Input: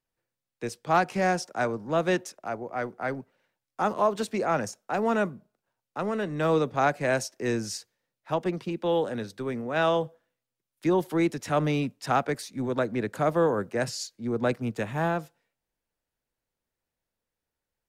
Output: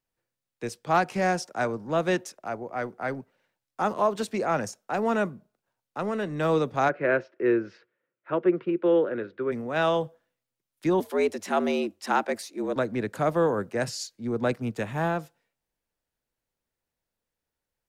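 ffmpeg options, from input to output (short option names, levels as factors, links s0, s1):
-filter_complex "[0:a]asplit=3[s0][s1][s2];[s0]afade=t=out:st=6.88:d=0.02[s3];[s1]highpass=170,equalizer=f=220:t=q:w=4:g=-5,equalizer=f=360:t=q:w=4:g=9,equalizer=f=530:t=q:w=4:g=4,equalizer=f=800:t=q:w=4:g=-9,equalizer=f=1400:t=q:w=4:g=7,lowpass=f=2600:w=0.5412,lowpass=f=2600:w=1.3066,afade=t=in:st=6.88:d=0.02,afade=t=out:st=9.51:d=0.02[s4];[s2]afade=t=in:st=9.51:d=0.02[s5];[s3][s4][s5]amix=inputs=3:normalize=0,asettb=1/sr,asplit=3[s6][s7][s8];[s6]atrim=end=11.004[s9];[s7]atrim=start=11:end=12.76,asetpts=PTS-STARTPTS,afade=t=in:d=0.004:c=qsin,afade=t=out:st=1.756:d=0.004:c=qsin,afreqshift=89[s10];[s8]atrim=start=12.756[s11];[s9][s10]acrossfade=d=0.004:c1=hsin:c2=qsin[s12];[s12][s11]acrossfade=d=0.004:c1=qsin:c2=hsin"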